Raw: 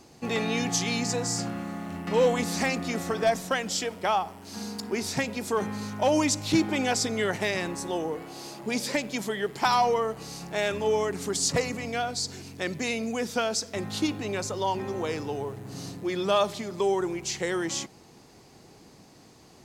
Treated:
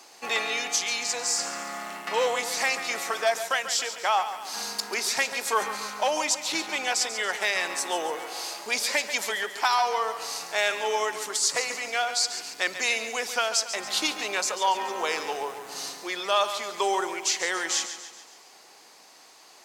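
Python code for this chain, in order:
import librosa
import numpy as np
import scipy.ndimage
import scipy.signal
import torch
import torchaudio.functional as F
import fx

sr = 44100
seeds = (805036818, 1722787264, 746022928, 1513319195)

y = scipy.signal.sosfilt(scipy.signal.butter(2, 830.0, 'highpass', fs=sr, output='sos'), x)
y = fx.rider(y, sr, range_db=4, speed_s=0.5)
y = fx.echo_feedback(y, sr, ms=140, feedback_pct=50, wet_db=-11.0)
y = y * librosa.db_to_amplitude(5.0)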